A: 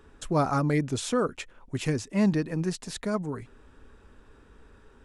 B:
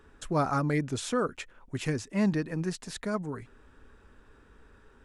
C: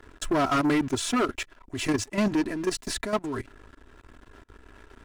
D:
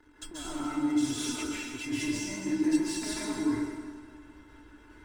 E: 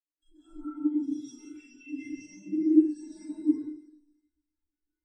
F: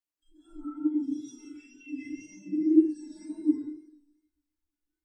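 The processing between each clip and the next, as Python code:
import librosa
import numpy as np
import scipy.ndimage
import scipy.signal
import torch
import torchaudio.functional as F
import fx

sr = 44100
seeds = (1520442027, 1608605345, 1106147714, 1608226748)

y1 = fx.peak_eq(x, sr, hz=1600.0, db=3.5, octaves=0.88)
y1 = F.gain(torch.from_numpy(y1), -3.0).numpy()
y2 = y1 + 0.77 * np.pad(y1, (int(3.0 * sr / 1000.0), 0))[:len(y1)]
y2 = fx.level_steps(y2, sr, step_db=14)
y2 = fx.leveller(y2, sr, passes=3)
y3 = fx.over_compress(y2, sr, threshold_db=-27.0, ratio=-0.5)
y3 = fx.comb_fb(y3, sr, f0_hz=300.0, decay_s=0.15, harmonics='odd', damping=0.0, mix_pct=90)
y3 = fx.rev_plate(y3, sr, seeds[0], rt60_s=1.7, hf_ratio=0.9, predelay_ms=120, drr_db=-8.0)
y4 = fx.echo_wet_highpass(y3, sr, ms=321, feedback_pct=60, hz=2800.0, wet_db=-7)
y4 = fx.rev_schroeder(y4, sr, rt60_s=0.69, comb_ms=33, drr_db=-2.5)
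y4 = fx.spectral_expand(y4, sr, expansion=2.5)
y4 = F.gain(torch.from_numpy(y4), 5.5).numpy()
y5 = fx.wow_flutter(y4, sr, seeds[1], rate_hz=2.1, depth_cents=32.0)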